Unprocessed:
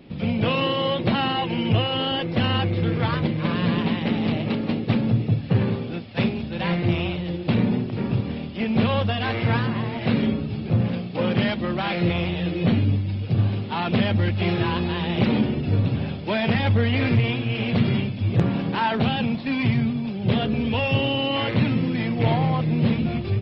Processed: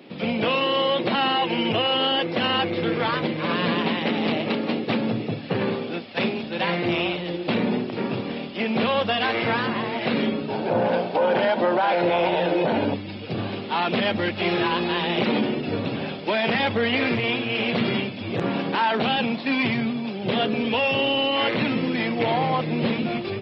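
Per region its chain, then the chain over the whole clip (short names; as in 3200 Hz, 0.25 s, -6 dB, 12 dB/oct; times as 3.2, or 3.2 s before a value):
10.48–12.94 bell 600 Hz +12 dB 1.2 oct + small resonant body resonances 920/1500 Hz, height 12 dB, ringing for 25 ms
whole clip: HPF 310 Hz 12 dB/oct; limiter -18 dBFS; gain +5 dB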